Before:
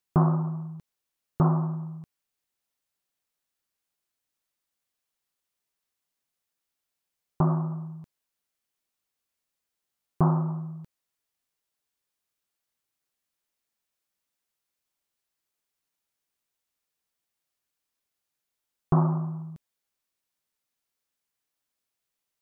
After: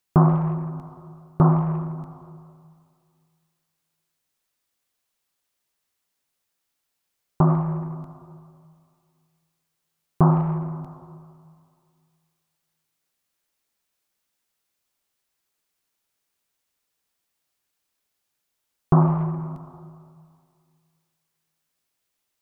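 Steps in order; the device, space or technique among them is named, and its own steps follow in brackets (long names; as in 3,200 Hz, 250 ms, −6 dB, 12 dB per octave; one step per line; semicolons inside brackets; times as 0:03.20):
saturated reverb return (on a send at −8 dB: convolution reverb RT60 2.2 s, pre-delay 69 ms + soft clipping −23.5 dBFS, distortion −14 dB)
on the sum: level +5.5 dB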